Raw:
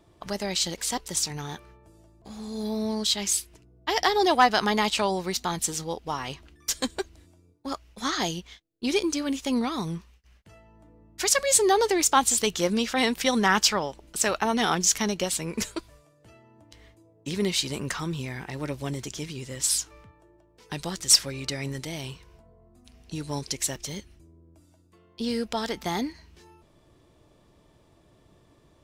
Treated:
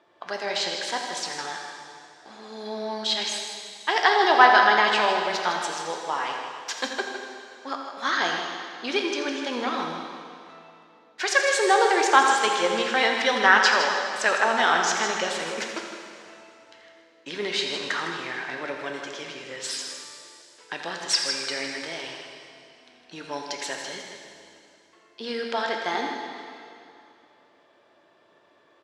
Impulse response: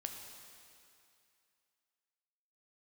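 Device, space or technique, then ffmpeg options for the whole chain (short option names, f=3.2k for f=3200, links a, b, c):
station announcement: -filter_complex "[0:a]highpass=480,lowpass=3.7k,equalizer=f=1.6k:t=o:w=0.32:g=7,aecho=1:1:84.55|157.4:0.251|0.355[a];[1:a]atrim=start_sample=2205[b];[a][b]afir=irnorm=-1:irlink=0,volume=6dB"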